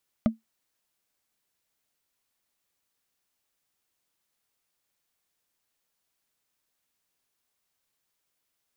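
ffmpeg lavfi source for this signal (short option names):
-f lavfi -i "aevalsrc='0.2*pow(10,-3*t/0.15)*sin(2*PI*224*t)+0.0944*pow(10,-3*t/0.044)*sin(2*PI*617.6*t)+0.0447*pow(10,-3*t/0.02)*sin(2*PI*1210.5*t)+0.0211*pow(10,-3*t/0.011)*sin(2*PI*2001*t)+0.01*pow(10,-3*t/0.007)*sin(2*PI*2988.2*t)':d=0.45:s=44100"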